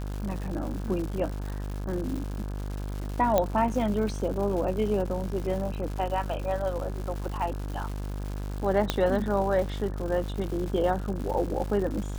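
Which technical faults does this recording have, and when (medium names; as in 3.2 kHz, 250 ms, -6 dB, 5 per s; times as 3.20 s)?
buzz 50 Hz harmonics 34 -33 dBFS
crackle 240 per s -34 dBFS
3.38 s: pop -10 dBFS
8.90 s: pop -9 dBFS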